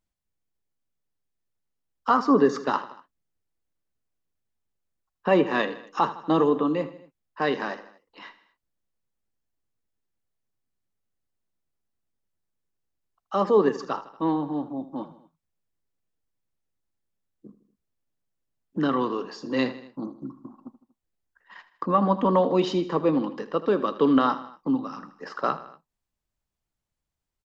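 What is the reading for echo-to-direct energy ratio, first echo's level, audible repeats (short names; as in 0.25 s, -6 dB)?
-13.5 dB, -15.0 dB, 3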